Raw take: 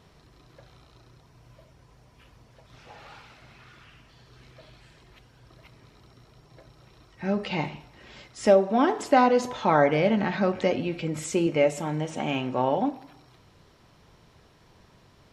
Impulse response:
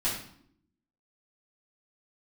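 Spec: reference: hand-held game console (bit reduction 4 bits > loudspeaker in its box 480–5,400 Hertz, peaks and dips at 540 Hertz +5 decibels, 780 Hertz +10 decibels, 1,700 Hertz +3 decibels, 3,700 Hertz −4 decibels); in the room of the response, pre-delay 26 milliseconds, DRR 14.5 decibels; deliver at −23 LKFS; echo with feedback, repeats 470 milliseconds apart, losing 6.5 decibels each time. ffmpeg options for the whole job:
-filter_complex "[0:a]aecho=1:1:470|940|1410|1880|2350|2820:0.473|0.222|0.105|0.0491|0.0231|0.0109,asplit=2[link_01][link_02];[1:a]atrim=start_sample=2205,adelay=26[link_03];[link_02][link_03]afir=irnorm=-1:irlink=0,volume=-22dB[link_04];[link_01][link_04]amix=inputs=2:normalize=0,acrusher=bits=3:mix=0:aa=0.000001,highpass=480,equalizer=frequency=540:width_type=q:width=4:gain=5,equalizer=frequency=780:width_type=q:width=4:gain=10,equalizer=frequency=1700:width_type=q:width=4:gain=3,equalizer=frequency=3700:width_type=q:width=4:gain=-4,lowpass=frequency=5400:width=0.5412,lowpass=frequency=5400:width=1.3066,volume=-3.5dB"

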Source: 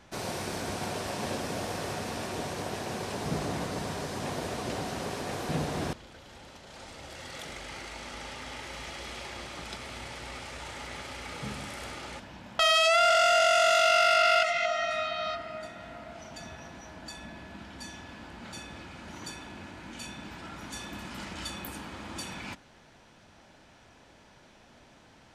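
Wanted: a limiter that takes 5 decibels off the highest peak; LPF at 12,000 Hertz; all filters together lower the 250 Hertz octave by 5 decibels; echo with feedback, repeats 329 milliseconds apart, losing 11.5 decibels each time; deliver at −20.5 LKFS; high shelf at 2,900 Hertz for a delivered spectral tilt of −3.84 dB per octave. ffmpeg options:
ffmpeg -i in.wav -af "lowpass=12000,equalizer=frequency=250:width_type=o:gain=-7,highshelf=frequency=2900:gain=-8,alimiter=limit=-20.5dB:level=0:latency=1,aecho=1:1:329|658|987:0.266|0.0718|0.0194,volume=13.5dB" out.wav

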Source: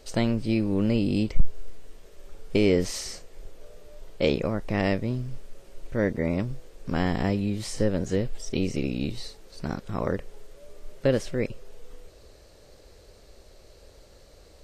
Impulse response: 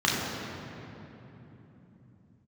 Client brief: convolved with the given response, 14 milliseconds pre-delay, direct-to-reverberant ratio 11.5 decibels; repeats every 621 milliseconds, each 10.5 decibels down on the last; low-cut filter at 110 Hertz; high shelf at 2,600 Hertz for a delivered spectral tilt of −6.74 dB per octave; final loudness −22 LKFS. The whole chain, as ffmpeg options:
-filter_complex "[0:a]highpass=110,highshelf=frequency=2600:gain=-8,aecho=1:1:621|1242|1863:0.299|0.0896|0.0269,asplit=2[link_01][link_02];[1:a]atrim=start_sample=2205,adelay=14[link_03];[link_02][link_03]afir=irnorm=-1:irlink=0,volume=-27dB[link_04];[link_01][link_04]amix=inputs=2:normalize=0,volume=6.5dB"

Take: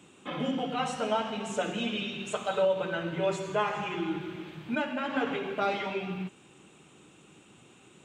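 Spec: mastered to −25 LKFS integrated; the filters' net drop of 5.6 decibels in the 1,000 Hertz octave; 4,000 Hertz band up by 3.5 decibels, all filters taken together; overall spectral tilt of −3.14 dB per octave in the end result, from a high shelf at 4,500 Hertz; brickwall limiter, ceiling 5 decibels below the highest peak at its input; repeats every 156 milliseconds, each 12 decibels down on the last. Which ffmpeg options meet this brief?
ffmpeg -i in.wav -af "equalizer=frequency=1000:width_type=o:gain=-8,equalizer=frequency=4000:width_type=o:gain=8,highshelf=frequency=4500:gain=-5,alimiter=limit=-23.5dB:level=0:latency=1,aecho=1:1:156|312|468:0.251|0.0628|0.0157,volume=9dB" out.wav

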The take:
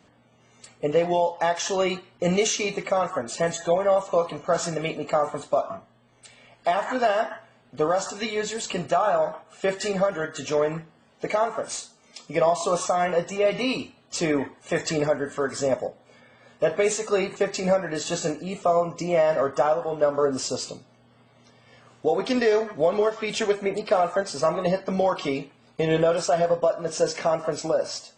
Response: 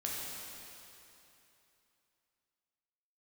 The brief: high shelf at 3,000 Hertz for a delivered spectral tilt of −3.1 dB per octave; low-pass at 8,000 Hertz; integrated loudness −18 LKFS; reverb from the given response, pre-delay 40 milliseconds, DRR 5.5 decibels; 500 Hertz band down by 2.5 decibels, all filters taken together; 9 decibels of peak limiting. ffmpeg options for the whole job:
-filter_complex "[0:a]lowpass=8000,equalizer=frequency=500:width_type=o:gain=-3.5,highshelf=frequency=3000:gain=8,alimiter=limit=-17dB:level=0:latency=1,asplit=2[link_01][link_02];[1:a]atrim=start_sample=2205,adelay=40[link_03];[link_02][link_03]afir=irnorm=-1:irlink=0,volume=-8.5dB[link_04];[link_01][link_04]amix=inputs=2:normalize=0,volume=9dB"

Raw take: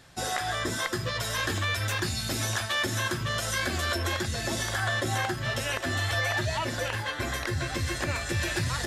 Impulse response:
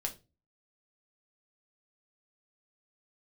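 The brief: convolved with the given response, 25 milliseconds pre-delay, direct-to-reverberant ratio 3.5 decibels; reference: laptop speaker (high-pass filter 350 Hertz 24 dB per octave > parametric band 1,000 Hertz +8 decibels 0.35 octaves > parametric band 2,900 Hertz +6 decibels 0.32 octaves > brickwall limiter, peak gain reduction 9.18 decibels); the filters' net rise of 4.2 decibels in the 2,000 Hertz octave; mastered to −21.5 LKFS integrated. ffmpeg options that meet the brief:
-filter_complex "[0:a]equalizer=frequency=2000:width_type=o:gain=4,asplit=2[link_01][link_02];[1:a]atrim=start_sample=2205,adelay=25[link_03];[link_02][link_03]afir=irnorm=-1:irlink=0,volume=-4.5dB[link_04];[link_01][link_04]amix=inputs=2:normalize=0,highpass=frequency=350:width=0.5412,highpass=frequency=350:width=1.3066,equalizer=frequency=1000:width_type=o:width=0.35:gain=8,equalizer=frequency=2900:width_type=o:width=0.32:gain=6,volume=6.5dB,alimiter=limit=-13.5dB:level=0:latency=1"

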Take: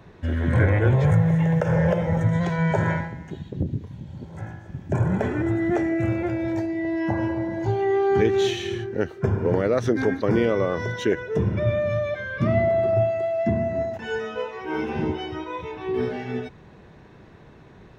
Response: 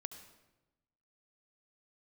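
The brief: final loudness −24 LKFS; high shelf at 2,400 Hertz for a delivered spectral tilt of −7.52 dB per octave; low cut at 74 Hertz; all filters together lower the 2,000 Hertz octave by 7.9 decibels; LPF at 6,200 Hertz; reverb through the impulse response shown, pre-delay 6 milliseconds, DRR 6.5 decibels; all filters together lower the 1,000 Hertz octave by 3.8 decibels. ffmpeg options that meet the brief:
-filter_complex "[0:a]highpass=74,lowpass=6200,equalizer=frequency=1000:width_type=o:gain=-3.5,equalizer=frequency=2000:width_type=o:gain=-5.5,highshelf=frequency=2400:gain=-7.5,asplit=2[link_01][link_02];[1:a]atrim=start_sample=2205,adelay=6[link_03];[link_02][link_03]afir=irnorm=-1:irlink=0,volume=-3dB[link_04];[link_01][link_04]amix=inputs=2:normalize=0,volume=-0.5dB"

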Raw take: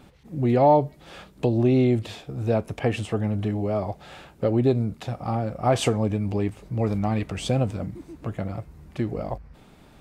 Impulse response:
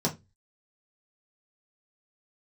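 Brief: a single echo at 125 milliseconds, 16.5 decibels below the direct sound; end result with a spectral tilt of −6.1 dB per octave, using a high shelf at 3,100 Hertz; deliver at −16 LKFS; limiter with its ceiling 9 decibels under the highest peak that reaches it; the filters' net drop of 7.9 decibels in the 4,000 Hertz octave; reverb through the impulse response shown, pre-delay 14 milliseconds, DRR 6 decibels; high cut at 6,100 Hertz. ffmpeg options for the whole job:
-filter_complex "[0:a]lowpass=6100,highshelf=frequency=3100:gain=-4,equalizer=frequency=4000:width_type=o:gain=-7.5,alimiter=limit=-17.5dB:level=0:latency=1,aecho=1:1:125:0.15,asplit=2[link_01][link_02];[1:a]atrim=start_sample=2205,adelay=14[link_03];[link_02][link_03]afir=irnorm=-1:irlink=0,volume=-14.5dB[link_04];[link_01][link_04]amix=inputs=2:normalize=0,volume=9dB"

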